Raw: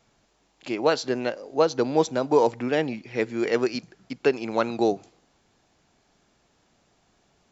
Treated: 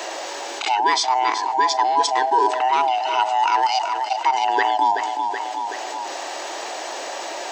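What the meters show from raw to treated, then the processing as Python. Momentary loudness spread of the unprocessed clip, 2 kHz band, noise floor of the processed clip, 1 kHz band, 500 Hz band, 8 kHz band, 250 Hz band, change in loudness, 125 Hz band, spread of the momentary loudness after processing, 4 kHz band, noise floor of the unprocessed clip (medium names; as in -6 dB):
9 LU, +8.0 dB, -31 dBFS, +15.5 dB, -4.5 dB, no reading, -9.5 dB, +4.0 dB, under -25 dB, 11 LU, +11.5 dB, -67 dBFS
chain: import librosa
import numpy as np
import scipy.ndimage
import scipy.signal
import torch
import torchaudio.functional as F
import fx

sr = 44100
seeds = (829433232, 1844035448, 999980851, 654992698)

y = fx.band_swap(x, sr, width_hz=500)
y = scipy.signal.sosfilt(scipy.signal.ellip(4, 1.0, 80, 340.0, 'highpass', fs=sr, output='sos'), y)
y = fx.echo_feedback(y, sr, ms=377, feedback_pct=32, wet_db=-19)
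y = fx.env_flatten(y, sr, amount_pct=70)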